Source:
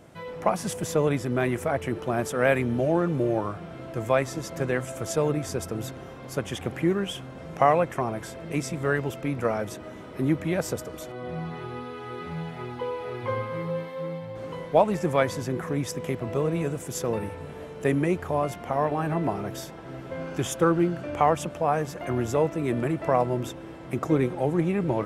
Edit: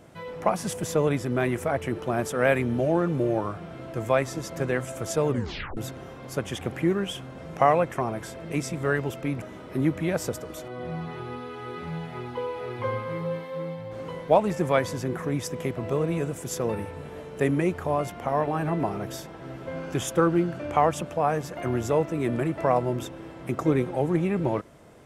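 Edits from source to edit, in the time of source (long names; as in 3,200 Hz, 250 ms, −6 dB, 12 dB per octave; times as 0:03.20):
0:05.28: tape stop 0.49 s
0:09.42–0:09.86: remove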